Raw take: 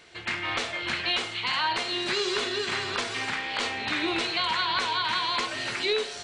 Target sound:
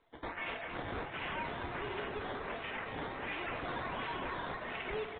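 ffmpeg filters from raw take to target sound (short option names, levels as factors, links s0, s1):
-filter_complex "[0:a]highpass=f=280:p=1,aemphasis=mode=production:type=riaa,afftdn=nr=18:nf=-47,equalizer=f=1300:t=o:w=0.93:g=-8.5,aecho=1:1:4.5:0.54,atempo=1.2,aresample=11025,volume=20,asoftclip=hard,volume=0.0501,aresample=44100,adynamicsmooth=sensitivity=1.5:basefreq=1300,acrusher=samples=13:mix=1:aa=0.000001:lfo=1:lforange=7.8:lforate=1.4,asoftclip=type=tanh:threshold=0.0335,asplit=6[s0][s1][s2][s3][s4][s5];[s1]adelay=234,afreqshift=31,volume=0.376[s6];[s2]adelay=468,afreqshift=62,volume=0.18[s7];[s3]adelay=702,afreqshift=93,volume=0.0861[s8];[s4]adelay=936,afreqshift=124,volume=0.0417[s9];[s5]adelay=1170,afreqshift=155,volume=0.02[s10];[s0][s6][s7][s8][s9][s10]amix=inputs=6:normalize=0,volume=0.75" -ar 8000 -c:a pcm_mulaw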